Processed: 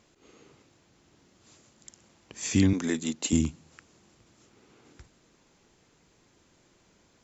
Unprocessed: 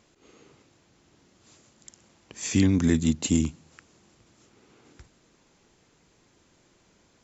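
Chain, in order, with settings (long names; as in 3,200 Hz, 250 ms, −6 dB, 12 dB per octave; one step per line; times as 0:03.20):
0:02.73–0:03.33: high-pass filter 340 Hz 12 dB per octave
level −1 dB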